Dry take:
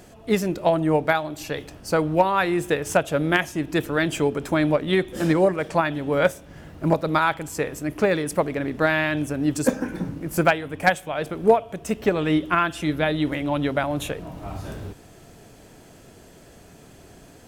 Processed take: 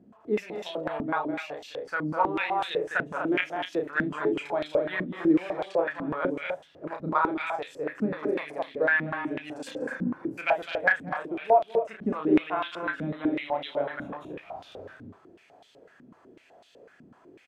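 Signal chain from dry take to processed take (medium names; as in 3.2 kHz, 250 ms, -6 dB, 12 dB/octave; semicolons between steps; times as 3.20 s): doubling 33 ms -5 dB; loudspeakers at several distances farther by 70 m -6 dB, 84 m -5 dB; step-sequenced band-pass 8 Hz 230–3500 Hz; trim +1 dB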